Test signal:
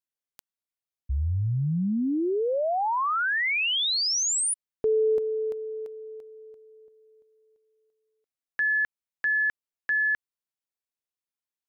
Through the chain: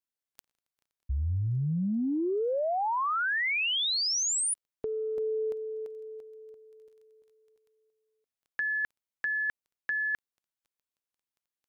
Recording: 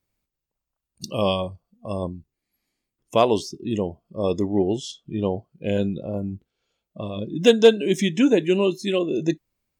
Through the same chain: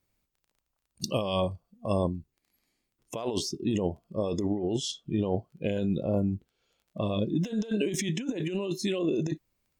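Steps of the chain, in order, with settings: crackle 11/s -53 dBFS; negative-ratio compressor -26 dBFS, ratio -1; gain -3 dB

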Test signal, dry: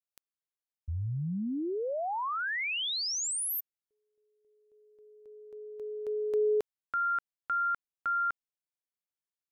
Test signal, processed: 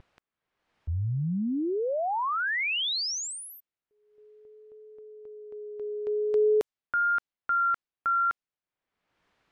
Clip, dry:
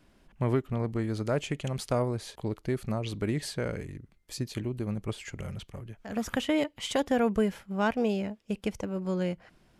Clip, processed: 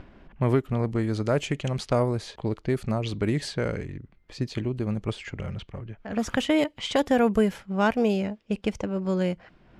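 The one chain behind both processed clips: upward compressor, threshold -46 dBFS; vibrato 0.47 Hz 22 cents; low-pass opened by the level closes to 2200 Hz, open at -24 dBFS; gain +4.5 dB

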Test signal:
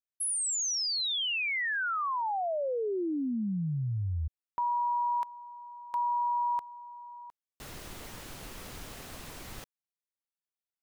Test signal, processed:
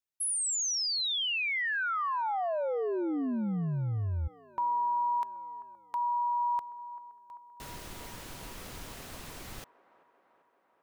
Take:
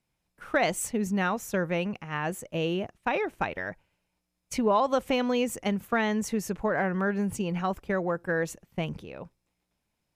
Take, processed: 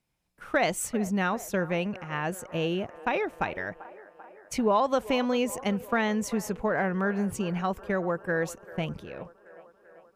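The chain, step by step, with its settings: band-limited delay 0.39 s, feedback 67%, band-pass 790 Hz, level -16 dB

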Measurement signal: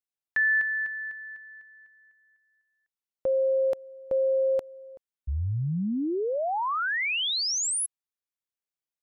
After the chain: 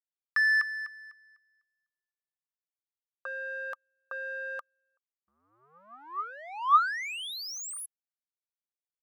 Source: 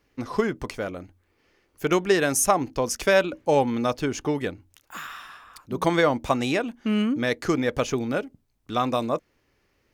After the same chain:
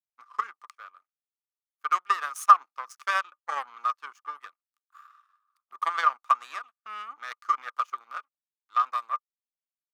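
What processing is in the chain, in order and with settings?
power-law curve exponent 2; resonant high-pass 1200 Hz, resonance Q 15; gain -5 dB

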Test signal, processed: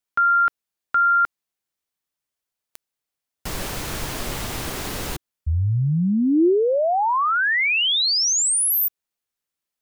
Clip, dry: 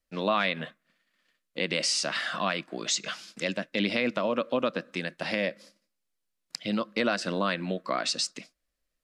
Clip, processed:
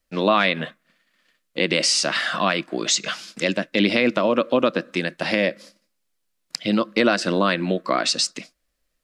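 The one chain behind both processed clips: dynamic EQ 340 Hz, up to +5 dB, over -44 dBFS, Q 3; gain +7.5 dB

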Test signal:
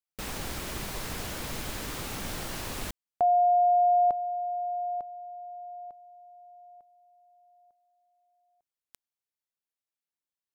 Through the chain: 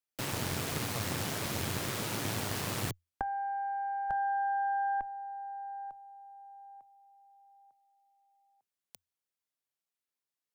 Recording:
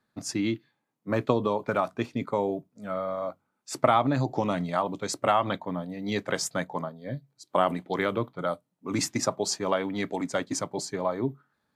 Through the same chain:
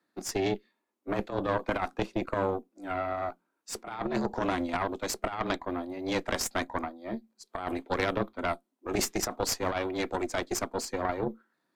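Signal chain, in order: negative-ratio compressor -26 dBFS, ratio -0.5; frequency shift +85 Hz; added harmonics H 4 -11 dB, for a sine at -12 dBFS; gain -3 dB

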